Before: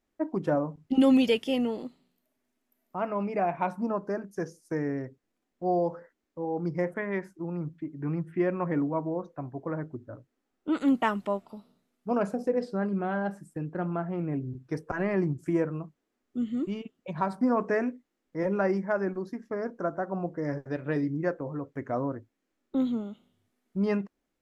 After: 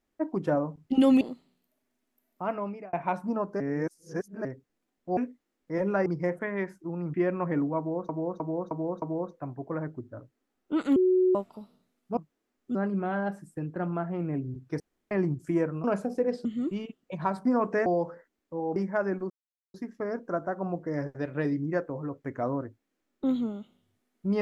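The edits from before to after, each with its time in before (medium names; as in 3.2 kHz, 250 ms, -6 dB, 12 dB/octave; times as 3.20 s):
1.21–1.75 s: delete
3.05–3.47 s: fade out
4.14–4.99 s: reverse
5.71–6.61 s: swap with 17.82–18.71 s
7.69–8.34 s: delete
8.98–9.29 s: loop, 5 plays
10.92–11.31 s: bleep 369 Hz -19 dBFS
12.13–12.74 s: swap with 15.83–16.41 s
14.79–15.10 s: room tone
19.25 s: insert silence 0.44 s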